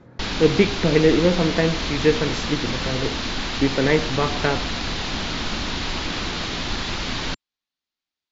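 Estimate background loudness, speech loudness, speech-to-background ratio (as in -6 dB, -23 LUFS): -26.0 LUFS, -21.5 LUFS, 4.5 dB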